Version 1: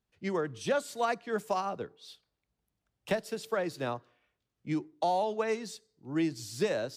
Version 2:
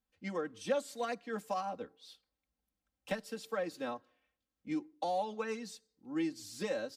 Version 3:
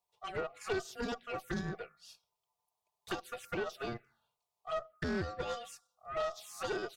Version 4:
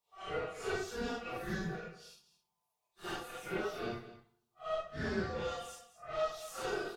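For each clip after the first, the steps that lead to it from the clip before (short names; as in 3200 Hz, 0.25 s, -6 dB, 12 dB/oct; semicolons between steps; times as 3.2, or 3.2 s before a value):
comb 3.8 ms, depth 88%; gain -7.5 dB
ring modulator 950 Hz; envelope phaser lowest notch 260 Hz, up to 2100 Hz, full sweep at -36 dBFS; tube stage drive 37 dB, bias 0.5; gain +8.5 dB
phase scrambler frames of 0.2 s; echo 0.215 s -14.5 dB; on a send at -21 dB: reverb RT60 0.90 s, pre-delay 12 ms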